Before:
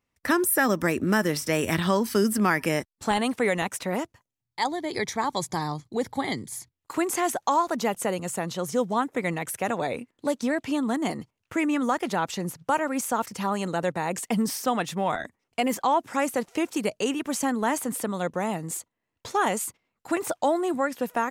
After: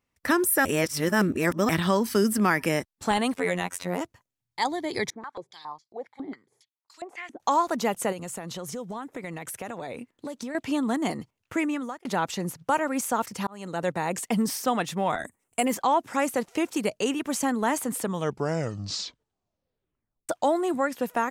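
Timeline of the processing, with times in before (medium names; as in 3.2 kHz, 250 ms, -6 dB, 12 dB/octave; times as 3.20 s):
0.65–1.69 s: reverse
3.34–4.01 s: robot voice 89 Hz
5.10–7.40 s: step-sequenced band-pass 7.3 Hz 300–4900 Hz
8.12–10.55 s: compression 5:1, threshold -32 dBFS
11.55–12.05 s: fade out
13.47–13.90 s: fade in
15.18–15.65 s: resonant high shelf 6.5 kHz +9.5 dB, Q 3
17.95 s: tape stop 2.34 s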